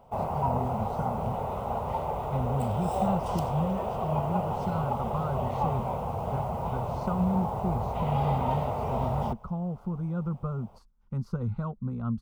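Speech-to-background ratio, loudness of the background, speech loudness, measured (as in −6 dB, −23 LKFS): −2.0 dB, −31.5 LKFS, −33.5 LKFS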